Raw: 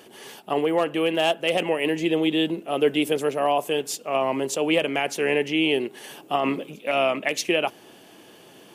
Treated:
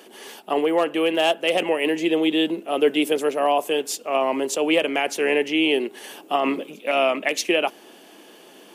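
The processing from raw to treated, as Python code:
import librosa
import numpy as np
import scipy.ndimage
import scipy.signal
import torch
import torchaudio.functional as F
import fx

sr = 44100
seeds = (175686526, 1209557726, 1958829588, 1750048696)

y = scipy.signal.sosfilt(scipy.signal.butter(4, 210.0, 'highpass', fs=sr, output='sos'), x)
y = F.gain(torch.from_numpy(y), 2.0).numpy()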